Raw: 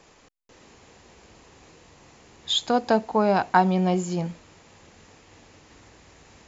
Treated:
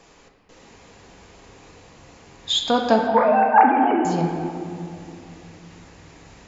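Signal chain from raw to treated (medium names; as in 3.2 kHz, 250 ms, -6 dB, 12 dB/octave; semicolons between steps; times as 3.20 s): 3.07–4.05 s: formants replaced by sine waves; reverberation RT60 2.6 s, pre-delay 4 ms, DRR 1 dB; trim +2 dB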